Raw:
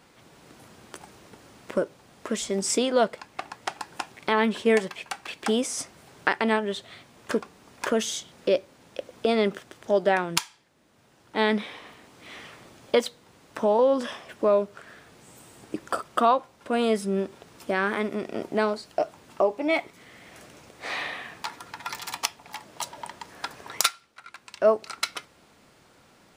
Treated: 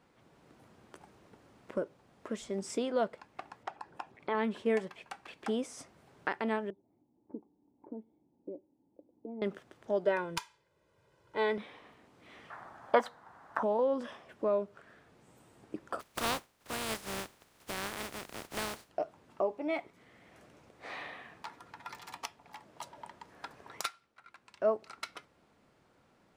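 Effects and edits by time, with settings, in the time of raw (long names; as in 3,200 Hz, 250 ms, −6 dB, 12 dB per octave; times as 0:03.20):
0:03.63–0:04.35: spectral envelope exaggerated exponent 1.5
0:06.70–0:09.42: formant resonators in series u
0:10.05–0:11.58: comb filter 2 ms, depth 77%
0:12.50–0:13.63: flat-topped bell 1,100 Hz +15.5 dB
0:15.99–0:18.88: compressing power law on the bin magnitudes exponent 0.21
whole clip: high-shelf EQ 2,600 Hz −10 dB; level −8.5 dB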